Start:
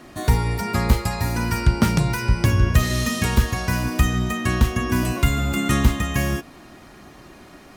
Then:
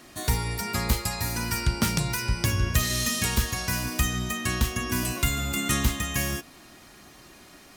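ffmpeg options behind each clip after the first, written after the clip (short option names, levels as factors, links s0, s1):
-af "highshelf=f=2500:g=12,volume=0.398"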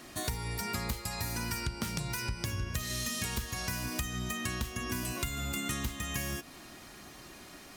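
-af "acompressor=threshold=0.0251:ratio=6"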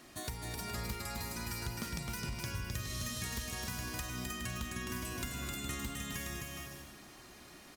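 -af "aecho=1:1:260|416|509.6|565.8|599.5:0.631|0.398|0.251|0.158|0.1,volume=0.473"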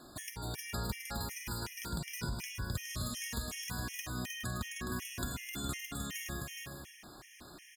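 -af "afftfilt=real='re*gt(sin(2*PI*2.7*pts/sr)*(1-2*mod(floor(b*sr/1024/1700),2)),0)':imag='im*gt(sin(2*PI*2.7*pts/sr)*(1-2*mod(floor(b*sr/1024/1700),2)),0)':win_size=1024:overlap=0.75,volume=1.41"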